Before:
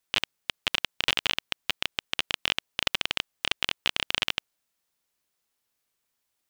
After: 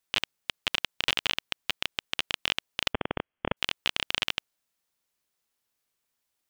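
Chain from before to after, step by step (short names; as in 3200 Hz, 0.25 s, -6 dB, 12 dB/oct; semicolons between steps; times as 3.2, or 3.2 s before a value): 2.93–3.57 inverted band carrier 3300 Hz; gain -1.5 dB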